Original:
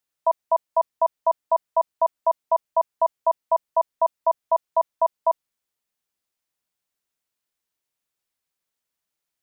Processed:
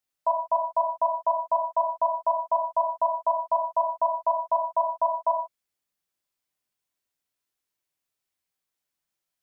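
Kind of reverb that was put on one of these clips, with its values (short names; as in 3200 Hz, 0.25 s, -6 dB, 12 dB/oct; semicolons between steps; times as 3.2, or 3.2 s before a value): non-linear reverb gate 0.17 s falling, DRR 0 dB; gain -4.5 dB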